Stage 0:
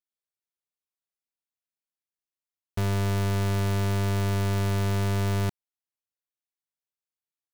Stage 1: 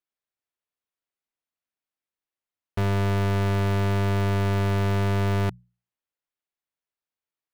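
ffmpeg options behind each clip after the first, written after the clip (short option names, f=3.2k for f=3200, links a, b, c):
-af "bass=f=250:g=-2,treble=f=4k:g=-10,bandreject=f=60:t=h:w=6,bandreject=f=120:t=h:w=6,bandreject=f=180:t=h:w=6,volume=4dB"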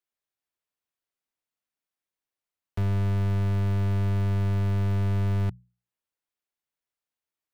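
-filter_complex "[0:a]acrossover=split=200[a][b];[b]acompressor=threshold=-54dB:ratio=1.5[c];[a][c]amix=inputs=2:normalize=0"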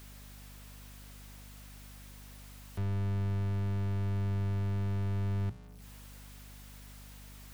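-af "aeval=exprs='val(0)+0.5*0.0106*sgn(val(0))':c=same,bandreject=f=60:t=h:w=6,bandreject=f=120:t=h:w=6,aeval=exprs='val(0)+0.00794*(sin(2*PI*50*n/s)+sin(2*PI*2*50*n/s)/2+sin(2*PI*3*50*n/s)/3+sin(2*PI*4*50*n/s)/4+sin(2*PI*5*50*n/s)/5)':c=same,volume=-8dB"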